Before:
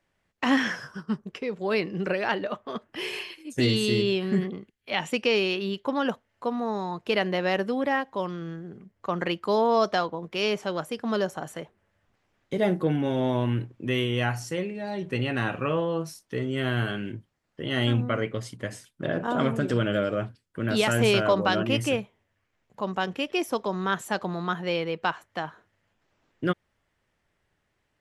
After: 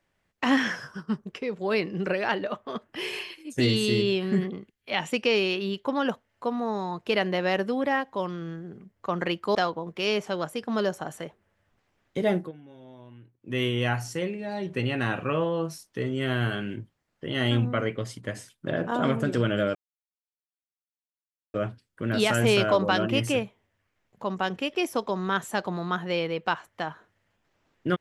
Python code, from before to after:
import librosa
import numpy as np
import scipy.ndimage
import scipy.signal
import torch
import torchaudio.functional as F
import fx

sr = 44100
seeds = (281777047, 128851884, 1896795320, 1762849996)

y = fx.edit(x, sr, fx.cut(start_s=9.55, length_s=0.36),
    fx.fade_down_up(start_s=12.62, length_s=1.41, db=-23.0, fade_s=0.26, curve='qsin'),
    fx.insert_silence(at_s=20.11, length_s=1.79), tone=tone)